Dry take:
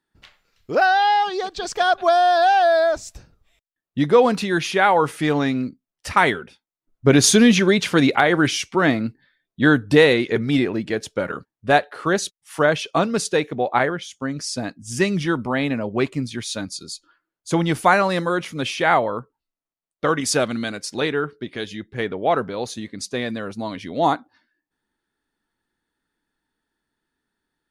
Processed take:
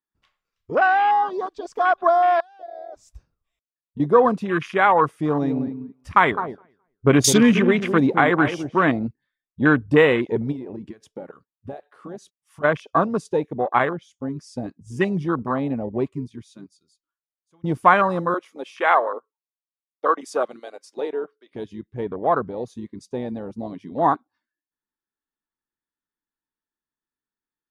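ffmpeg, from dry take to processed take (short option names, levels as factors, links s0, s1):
-filter_complex "[0:a]asettb=1/sr,asplit=3[s0][s1][s2];[s0]atrim=end=2.404[s3];[s1]atrim=start=2.4:end=4,asetpts=PTS-STARTPTS,afade=t=in:d=0.004:c=qsin,afade=t=out:st=1.596:d=0.004:c=qsin,acompressor=threshold=0.0316:ratio=16:attack=3.2:release=140:knee=1:detection=peak[s4];[s2]atrim=start=3.996[s5];[s3][s4]acrossfade=d=0.004:c1=hsin:c2=qsin[s6];[s6][s5]acrossfade=d=0.004:c1=qsin:c2=hsin,asettb=1/sr,asplit=3[s7][s8][s9];[s7]atrim=end=5.074[s10];[s8]atrim=start=5.07:end=8.83,asetpts=PTS-STARTPTS,afade=t=in:d=0.004:c=qsin,afade=t=out:st=3.756:d=0.004:c=qsin,asplit=2[s11][s12];[s12]adelay=210,lowpass=f=1600:p=1,volume=0.376,asplit=2[s13][s14];[s14]adelay=210,lowpass=f=1600:p=1,volume=0.21,asplit=2[s15][s16];[s16]adelay=210,lowpass=f=1600:p=1,volume=0.21[s17];[s11][s13][s15][s17]amix=inputs=4:normalize=0,atrim=end_sample=165816[s18];[s9]atrim=start=8.826[s19];[s10][s18]acrossfade=d=0.004:c1=hsin:c2=qsin[s20];[s20][s19]acrossfade=d=0.004:c1=qsin:c2=hsin,asplit=3[s21][s22][s23];[s21]afade=t=out:st=10.51:d=0.02[s24];[s22]acompressor=threshold=0.0447:ratio=8:attack=3.2:release=140:knee=1:detection=peak,afade=t=in:st=10.51:d=0.02,afade=t=out:st=12.63:d=0.02[s25];[s23]afade=t=in:st=12.63:d=0.02[s26];[s24][s25][s26]amix=inputs=3:normalize=0,asettb=1/sr,asplit=3[s27][s28][s29];[s27]atrim=end=18.344[s30];[s28]atrim=start=18.34:end=21.52,asetpts=PTS-STARTPTS,afade=t=in:d=0.004:c=qsin,afade=t=out:st=3.176:d=0.004:c=qsin,highpass=f=360:w=0.5412,highpass=f=360:w=1.3066[s31];[s29]atrim=start=21.516[s32];[s30][s31]acrossfade=d=0.004:c1=hsin:c2=qsin[s33];[s33][s32]acrossfade=d=0.004:c1=qsin:c2=hsin,asplit=2[s34][s35];[s34]atrim=end=17.64,asetpts=PTS-STARTPTS,afade=t=out:st=15.93:d=1.71:c=qua:silence=0.0707946[s36];[s35]atrim=start=17.64,asetpts=PTS-STARTPTS,afade=t=in:d=0.004:c=hsin:silence=0.0707946[s37];[s36][s37]concat=n=2:v=0:a=1,bandreject=f=4200:w=14,afwtdn=0.0708,equalizer=f=1100:w=5.3:g=9,volume=0.841"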